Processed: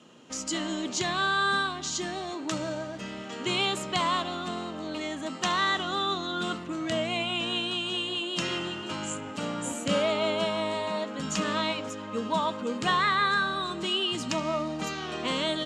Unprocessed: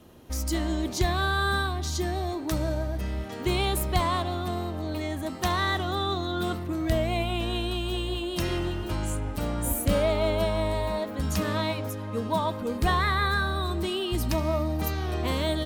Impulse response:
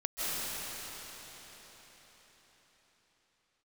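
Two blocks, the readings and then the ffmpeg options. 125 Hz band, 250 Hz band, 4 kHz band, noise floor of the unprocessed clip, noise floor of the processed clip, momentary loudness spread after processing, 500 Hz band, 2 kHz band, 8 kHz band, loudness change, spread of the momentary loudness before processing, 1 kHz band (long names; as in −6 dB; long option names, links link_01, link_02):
−11.5 dB, −2.5 dB, +4.0 dB, −35 dBFS, −39 dBFS, 9 LU, −2.5 dB, +1.5 dB, +1.0 dB, −1.0 dB, 7 LU, +0.5 dB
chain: -af "highpass=frequency=160:width=0.5412,highpass=frequency=160:width=1.3066,equalizer=frequency=350:width_type=q:width=4:gain=-5,equalizer=frequency=710:width_type=q:width=4:gain=-4,equalizer=frequency=1300:width_type=q:width=4:gain=4,equalizer=frequency=2900:width_type=q:width=4:gain=8,equalizer=frequency=7200:width_type=q:width=4:gain=9,lowpass=frequency=7500:width=0.5412,lowpass=frequency=7500:width=1.3066"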